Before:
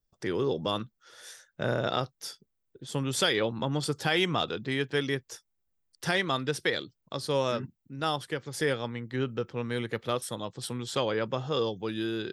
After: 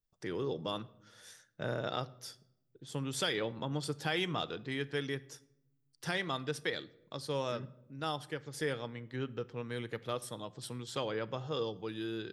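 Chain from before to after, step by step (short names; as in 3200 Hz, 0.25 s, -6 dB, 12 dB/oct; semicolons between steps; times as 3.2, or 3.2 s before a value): shoebox room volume 2700 m³, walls furnished, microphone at 0.49 m; gain -7.5 dB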